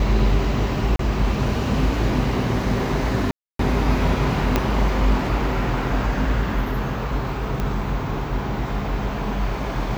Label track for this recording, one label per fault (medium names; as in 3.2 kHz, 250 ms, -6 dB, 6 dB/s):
0.960000	0.990000	dropout 33 ms
3.310000	3.590000	dropout 283 ms
4.560000	4.560000	pop -4 dBFS
7.600000	7.600000	pop -12 dBFS